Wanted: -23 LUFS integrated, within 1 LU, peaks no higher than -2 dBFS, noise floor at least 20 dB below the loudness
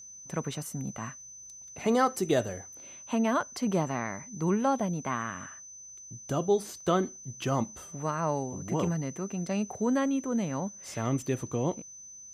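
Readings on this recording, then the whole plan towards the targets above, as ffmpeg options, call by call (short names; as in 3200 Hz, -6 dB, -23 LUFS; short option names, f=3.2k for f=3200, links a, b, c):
steady tone 6100 Hz; tone level -45 dBFS; loudness -31.0 LUFS; peak -13.0 dBFS; loudness target -23.0 LUFS
-> -af "bandreject=f=6.1k:w=30"
-af "volume=8dB"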